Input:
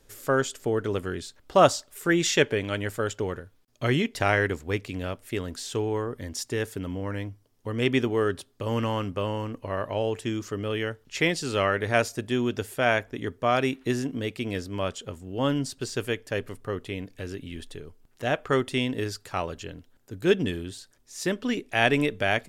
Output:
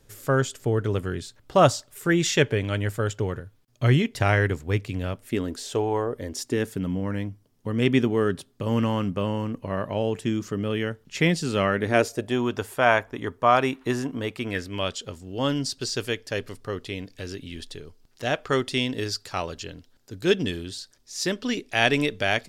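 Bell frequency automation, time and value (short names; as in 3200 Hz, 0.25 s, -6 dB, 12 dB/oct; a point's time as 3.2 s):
bell +9.5 dB 0.98 oct
5.1 s 120 Hz
5.89 s 870 Hz
6.76 s 180 Hz
11.72 s 180 Hz
12.45 s 1000 Hz
14.34 s 1000 Hz
14.99 s 4800 Hz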